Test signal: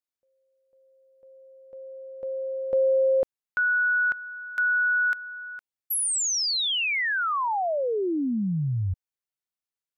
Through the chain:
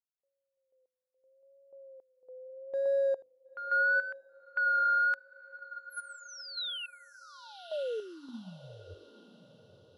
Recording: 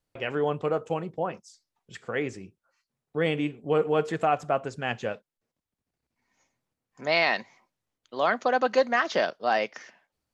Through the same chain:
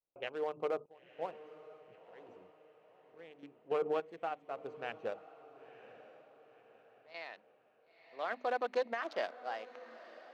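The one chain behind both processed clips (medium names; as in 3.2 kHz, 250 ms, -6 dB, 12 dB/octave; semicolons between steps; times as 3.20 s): local Wiener filter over 25 samples; vibrato 0.77 Hz 68 cents; level-controlled noise filter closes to 1.9 kHz, open at -25 dBFS; hum notches 50/100/150/200/250/300 Hz; random-step tremolo 3.5 Hz, depth 95%; tone controls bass -15 dB, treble -2 dB; peak limiter -23.5 dBFS; echo that smears into a reverb 977 ms, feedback 44%, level -12 dB; upward expansion 1.5:1, over -41 dBFS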